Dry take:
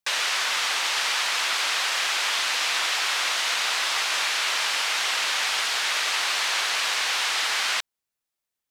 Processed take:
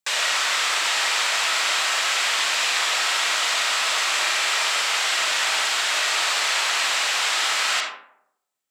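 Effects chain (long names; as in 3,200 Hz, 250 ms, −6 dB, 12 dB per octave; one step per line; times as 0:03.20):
high-pass filter 120 Hz 6 dB per octave
parametric band 7,600 Hz +7.5 dB 0.25 octaves
convolution reverb RT60 0.75 s, pre-delay 5 ms, DRR −0.5 dB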